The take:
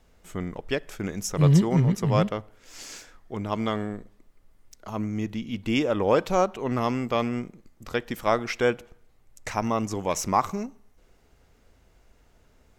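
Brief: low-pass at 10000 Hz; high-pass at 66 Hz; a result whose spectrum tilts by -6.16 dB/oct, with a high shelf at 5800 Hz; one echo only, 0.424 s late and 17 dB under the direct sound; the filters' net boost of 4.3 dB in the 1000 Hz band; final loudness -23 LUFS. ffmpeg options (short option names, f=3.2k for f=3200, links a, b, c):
-af "highpass=66,lowpass=10k,equalizer=f=1k:t=o:g=5.5,highshelf=f=5.8k:g=-4.5,aecho=1:1:424:0.141,volume=2dB"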